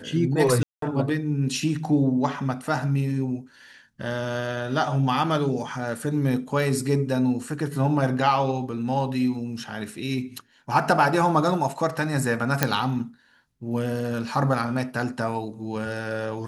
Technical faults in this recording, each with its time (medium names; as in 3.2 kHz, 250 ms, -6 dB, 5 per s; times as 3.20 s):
0.63–0.82 s: dropout 193 ms
12.63 s: pop -3 dBFS